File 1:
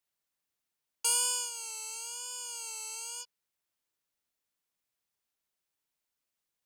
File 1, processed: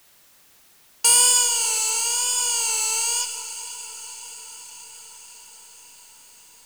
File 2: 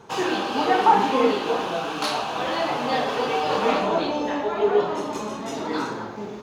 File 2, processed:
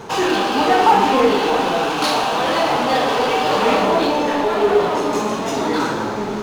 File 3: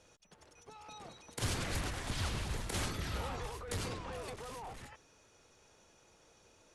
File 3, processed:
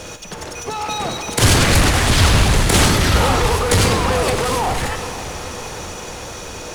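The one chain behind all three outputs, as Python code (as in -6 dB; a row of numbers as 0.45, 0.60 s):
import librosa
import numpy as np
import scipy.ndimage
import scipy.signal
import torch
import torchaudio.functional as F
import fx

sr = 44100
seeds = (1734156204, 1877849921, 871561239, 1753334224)

y = fx.power_curve(x, sr, exponent=0.7)
y = fx.echo_diffused(y, sr, ms=530, feedback_pct=69, wet_db=-14)
y = fx.rev_schroeder(y, sr, rt60_s=1.3, comb_ms=38, drr_db=7.5)
y = y * 10.0 ** (-3 / 20.0) / np.max(np.abs(y))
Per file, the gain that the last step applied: +9.5, +1.0, +21.0 dB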